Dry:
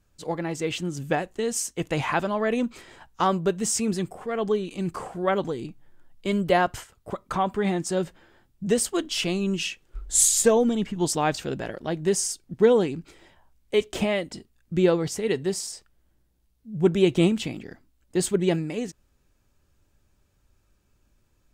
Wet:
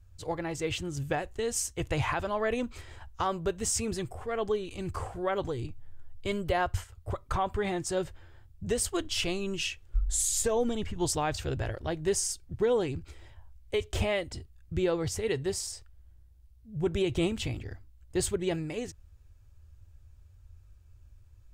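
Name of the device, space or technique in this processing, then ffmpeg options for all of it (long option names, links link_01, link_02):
car stereo with a boomy subwoofer: -af "lowshelf=frequency=130:width_type=q:width=3:gain=12.5,alimiter=limit=-15.5dB:level=0:latency=1:release=136,volume=-3dB"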